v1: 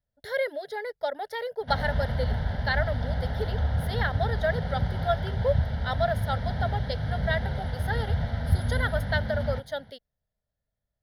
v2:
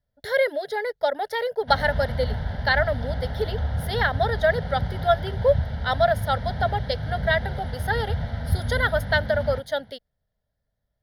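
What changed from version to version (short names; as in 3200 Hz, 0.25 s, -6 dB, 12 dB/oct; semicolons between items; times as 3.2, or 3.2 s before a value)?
speech +6.5 dB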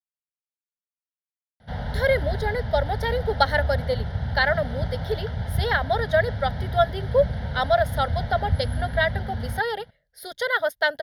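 speech: entry +1.70 s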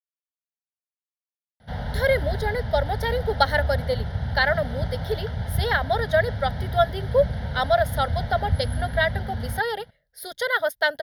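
master: add high shelf 9600 Hz +7.5 dB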